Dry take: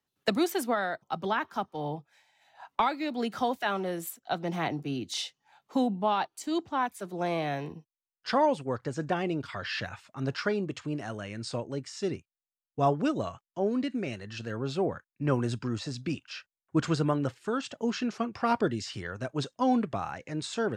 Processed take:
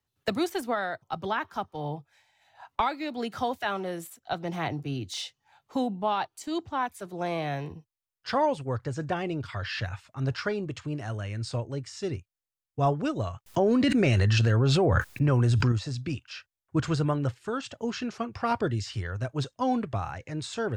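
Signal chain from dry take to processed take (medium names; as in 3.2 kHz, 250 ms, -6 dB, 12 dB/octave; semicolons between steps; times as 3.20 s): de-esser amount 75%; resonant low shelf 140 Hz +9 dB, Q 1.5; 13.46–15.72 s: level flattener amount 100%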